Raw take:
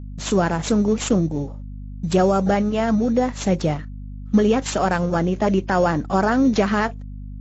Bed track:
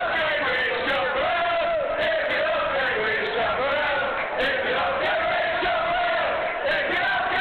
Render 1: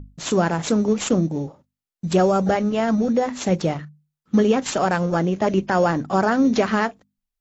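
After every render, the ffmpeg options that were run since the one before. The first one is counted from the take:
-af "bandreject=f=50:t=h:w=6,bandreject=f=100:t=h:w=6,bandreject=f=150:t=h:w=6,bandreject=f=200:t=h:w=6,bandreject=f=250:t=h:w=6"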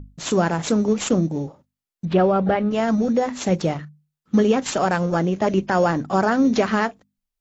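-filter_complex "[0:a]asettb=1/sr,asplit=3[a][b][c];[a]atrim=end=2.054[d];[b]atrim=start=2.05:end=2.71,asetpts=PTS-STARTPTS,afade=t=in:d=0.004:c=qsin,afade=t=out:st=0.656:d=0.004:c=qsin,lowpass=f=3.5k:w=0.5412,lowpass=f=3.5k:w=1.3066[e];[c]atrim=start=2.706[f];[d][e]acrossfade=d=0.004:c1=hsin:c2=qsin[g];[g][f]acrossfade=d=0.004:c1=qsin:c2=hsin"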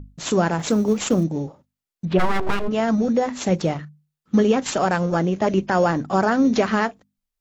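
-filter_complex "[0:a]asettb=1/sr,asplit=3[a][b][c];[a]atrim=end=0.594[d];[b]atrim=start=0.59:end=1.24,asetpts=PTS-STARTPTS,afade=t=in:d=0.004:c=qsin,afade=t=out:st=0.646:d=0.004:c=qsin,acrusher=bits=9:mode=log:mix=0:aa=0.000001[e];[c]atrim=start=1.236[f];[d][e]acrossfade=d=0.004:c1=hsin:c2=qsin[g];[g][f]acrossfade=d=0.004:c1=qsin:c2=hsin,asplit=3[h][i][j];[h]afade=t=out:st=2.18:d=0.02[k];[i]aeval=exprs='abs(val(0))':c=same,afade=t=in:st=2.18:d=0.02,afade=t=out:st=2.67:d=0.02[l];[j]afade=t=in:st=2.67:d=0.02[m];[k][l][m]amix=inputs=3:normalize=0"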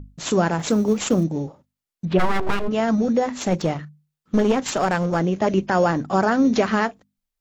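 -filter_complex "[0:a]asettb=1/sr,asplit=3[a][b][c];[a]atrim=end=3.284[d];[b]atrim=start=3.28:end=5.21,asetpts=PTS-STARTPTS,afade=t=in:d=0.004:c=qsin,afade=t=out:st=1.926:d=0.004:c=qsin,aeval=exprs='clip(val(0),-1,0.112)':c=same[e];[c]atrim=start=5.206[f];[d][e]acrossfade=d=0.004:c1=hsin:c2=qsin[g];[g][f]acrossfade=d=0.004:c1=qsin:c2=hsin"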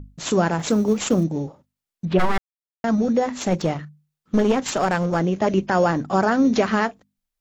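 -filter_complex "[0:a]asplit=3[a][b][c];[a]atrim=end=2.38,asetpts=PTS-STARTPTS,afade=t=out:st=2.376:d=0.004:c=hsin[d];[b]atrim=start=2.38:end=2.84,asetpts=PTS-STARTPTS,volume=0[e];[c]atrim=start=2.84,asetpts=PTS-STARTPTS,afade=t=in:d=0.004:c=hsin[f];[d][e][f]concat=n=3:v=0:a=1"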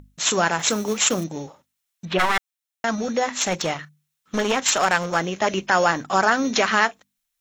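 -af "tiltshelf=f=690:g=-9.5,bandreject=f=4.7k:w=12"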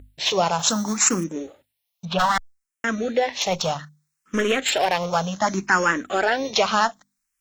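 -filter_complex "[0:a]asplit=2[a][b];[b]asoftclip=type=tanh:threshold=-12dB,volume=-7dB[c];[a][c]amix=inputs=2:normalize=0,asplit=2[d][e];[e]afreqshift=0.65[f];[d][f]amix=inputs=2:normalize=1"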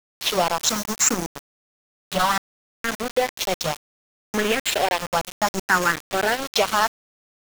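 -af "aeval=exprs='val(0)*gte(abs(val(0)),0.0841)':c=same"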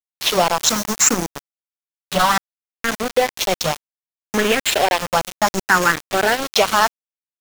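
-af "volume=4.5dB,alimiter=limit=-1dB:level=0:latency=1"

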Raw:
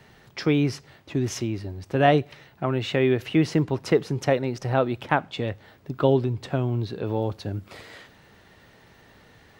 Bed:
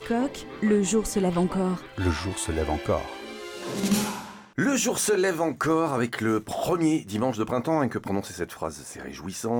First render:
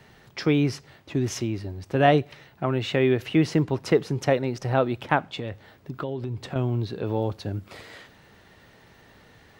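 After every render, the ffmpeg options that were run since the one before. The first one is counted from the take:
-filter_complex "[0:a]asettb=1/sr,asplit=3[a][b][c];[a]atrim=end=5.334[d];[b]atrim=start=5.33:end=6.56,asetpts=PTS-STARTPTS,afade=t=in:d=0.004:c=qsin,afade=t=out:st=1.226:d=0.004:c=qsin,acompressor=threshold=-27dB:ratio=5:attack=3.2:release=140:knee=1:detection=peak[e];[c]atrim=start=6.556[f];[d][e]acrossfade=d=0.004:c1=hsin:c2=qsin[g];[g][f]acrossfade=d=0.004:c1=qsin:c2=hsin"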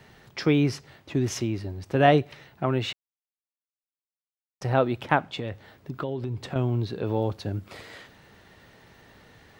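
-filter_complex "[0:a]asplit=3[a][b][c];[a]atrim=end=2.93,asetpts=PTS-STARTPTS,afade=t=out:st=2.926:d=0.004:c=hsin[d];[b]atrim=start=2.93:end=4.61,asetpts=PTS-STARTPTS,volume=0[e];[c]atrim=start=4.61,asetpts=PTS-STARTPTS,afade=t=in:d=0.004:c=hsin[f];[d][e][f]concat=n=3:v=0:a=1"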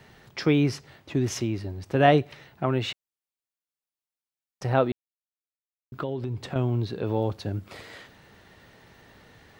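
-filter_complex "[0:a]asplit=3[a][b][c];[a]atrim=end=4.92,asetpts=PTS-STARTPTS,afade=t=out:st=4.916:d=0.004:c=hsin[d];[b]atrim=start=4.92:end=5.92,asetpts=PTS-STARTPTS,volume=0[e];[c]atrim=start=5.92,asetpts=PTS-STARTPTS,afade=t=in:d=0.004:c=hsin[f];[d][e][f]concat=n=3:v=0:a=1"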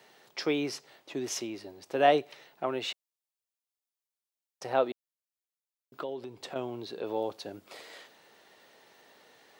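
-af "highpass=470,equalizer=f=1.6k:w=0.78:g=-6"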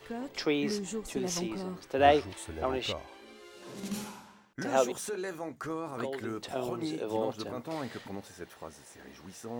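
-filter_complex "[1:a]volume=-13.5dB[a];[0:a][a]amix=inputs=2:normalize=0"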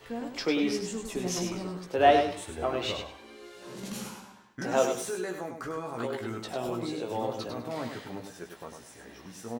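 -filter_complex "[0:a]asplit=2[a][b];[b]adelay=17,volume=-5.5dB[c];[a][c]amix=inputs=2:normalize=0,aecho=1:1:100|200|300:0.473|0.114|0.0273"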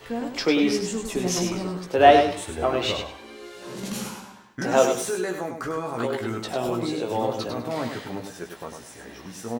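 -af "volume=6.5dB"

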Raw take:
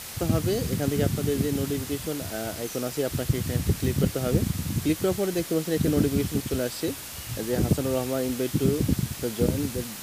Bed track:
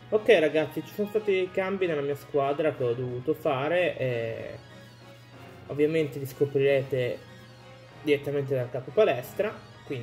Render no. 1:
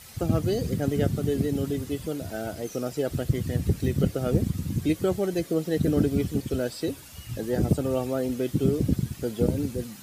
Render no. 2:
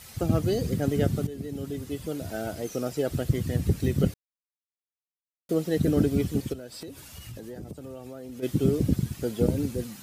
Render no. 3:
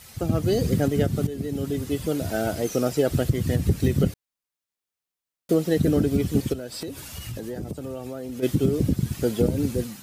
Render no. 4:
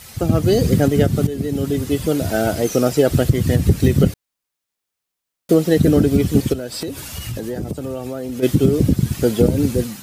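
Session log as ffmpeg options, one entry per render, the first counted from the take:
-af "afftdn=nr=11:nf=-38"
-filter_complex "[0:a]asplit=3[a][b][c];[a]afade=t=out:st=6.52:d=0.02[d];[b]acompressor=threshold=-37dB:ratio=6:attack=3.2:release=140:knee=1:detection=peak,afade=t=in:st=6.52:d=0.02,afade=t=out:st=8.42:d=0.02[e];[c]afade=t=in:st=8.42:d=0.02[f];[d][e][f]amix=inputs=3:normalize=0,asplit=4[g][h][i][j];[g]atrim=end=1.27,asetpts=PTS-STARTPTS,afade=t=out:st=1.266:d=0.004:c=hsin:silence=0.199526[k];[h]atrim=start=1.27:end=4.14,asetpts=PTS-STARTPTS,afade=t=in:d=1.05:silence=0.199526,afade=t=out:st=2.866:d=0.004:c=hsin[l];[i]atrim=start=4.14:end=5.49,asetpts=PTS-STARTPTS,volume=0[m];[j]atrim=start=5.49,asetpts=PTS-STARTPTS,afade=t=in:d=0.004:c=hsin[n];[k][l][m][n]concat=n=4:v=0:a=1"
-af "dynaudnorm=f=200:g=5:m=7dB,alimiter=limit=-10.5dB:level=0:latency=1:release=223"
-af "volume=7dB"

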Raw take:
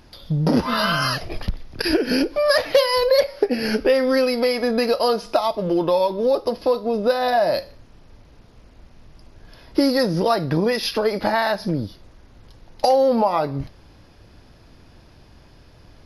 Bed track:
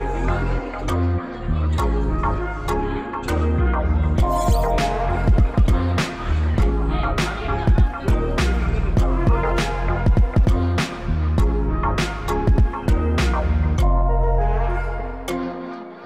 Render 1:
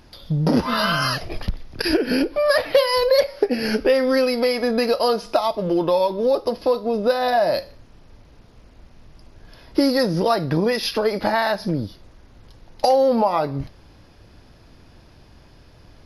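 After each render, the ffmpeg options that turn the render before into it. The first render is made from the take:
-filter_complex "[0:a]asettb=1/sr,asplit=3[a][b][c];[a]atrim=end=1.974[d];[b]atrim=start=1.97:end=2.87,asetpts=PTS-STARTPTS,afade=t=in:d=0.004:c=qsin,afade=t=out:st=0.896:d=0.004:c=qsin,equalizer=f=6.9k:w=2.2:g=-13.5[e];[c]atrim=start=2.866[f];[d][e]acrossfade=d=0.004:c1=hsin:c2=qsin[g];[g][f]acrossfade=d=0.004:c1=qsin:c2=hsin"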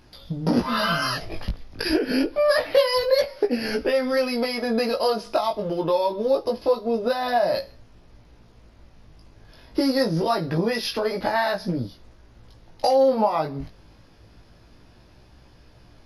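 -af "flanger=delay=16.5:depth=2.6:speed=0.26"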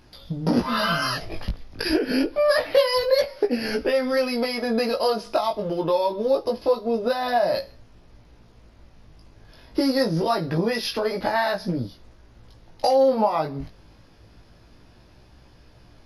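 -af anull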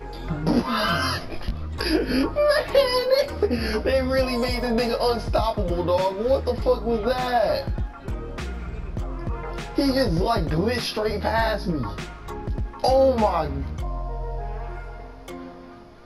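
-filter_complex "[1:a]volume=-12dB[a];[0:a][a]amix=inputs=2:normalize=0"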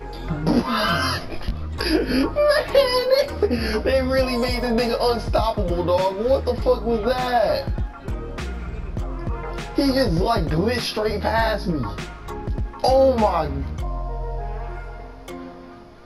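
-af "volume=2dB"

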